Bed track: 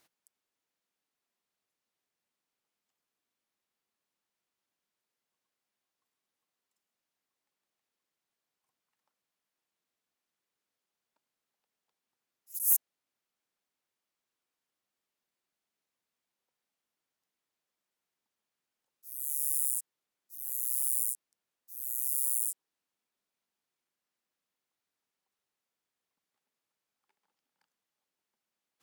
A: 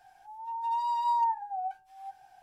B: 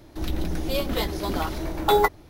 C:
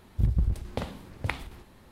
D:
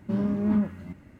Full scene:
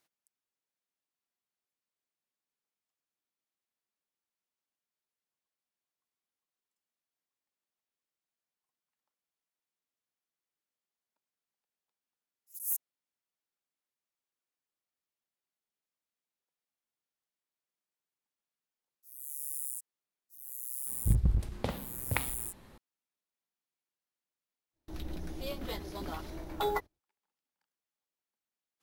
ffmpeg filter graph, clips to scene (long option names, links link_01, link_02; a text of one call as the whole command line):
ffmpeg -i bed.wav -i cue0.wav -i cue1.wav -i cue2.wav -filter_complex "[0:a]volume=-8dB[link_01];[3:a]equalizer=frequency=79:width_type=o:width=0.28:gain=-4.5[link_02];[2:a]agate=range=-25dB:threshold=-41dB:ratio=16:release=100:detection=peak[link_03];[link_02]atrim=end=1.91,asetpts=PTS-STARTPTS,volume=-1.5dB,afade=type=in:duration=0.004:curve=hsin,afade=type=out:start_time=1.906:duration=0.004:curve=hsin,adelay=20870[link_04];[link_03]atrim=end=2.29,asetpts=PTS-STARTPTS,volume=-13dB,afade=type=in:duration=0.05,afade=type=out:start_time=2.24:duration=0.05,adelay=1090152S[link_05];[link_01][link_04][link_05]amix=inputs=3:normalize=0" out.wav